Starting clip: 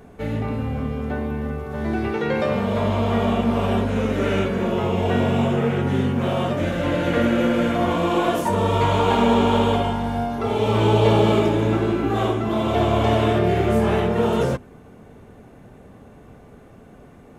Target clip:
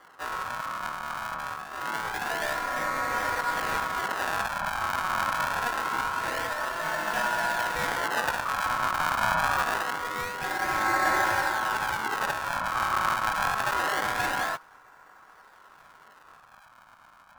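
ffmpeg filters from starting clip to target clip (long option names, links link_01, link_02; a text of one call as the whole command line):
ffmpeg -i in.wav -af "acrusher=samples=33:mix=1:aa=0.000001:lfo=1:lforange=52.8:lforate=0.25,aeval=exprs='val(0)*sin(2*PI*1200*n/s)':channel_layout=same,volume=-5.5dB" out.wav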